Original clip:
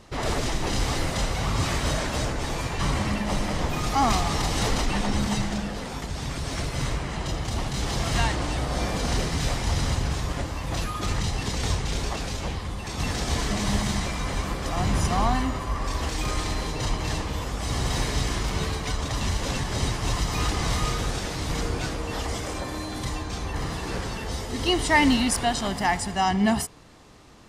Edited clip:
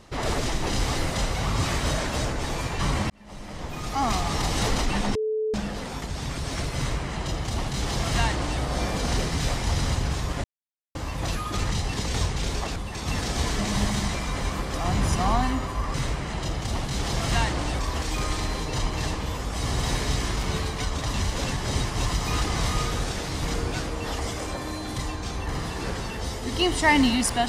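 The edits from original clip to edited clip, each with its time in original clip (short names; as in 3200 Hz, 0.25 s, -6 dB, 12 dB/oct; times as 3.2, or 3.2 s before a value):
3.1–4.48 fade in
5.15–5.54 bleep 434 Hz -23 dBFS
6.77–8.62 copy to 15.86
10.44 insert silence 0.51 s
12.25–12.68 cut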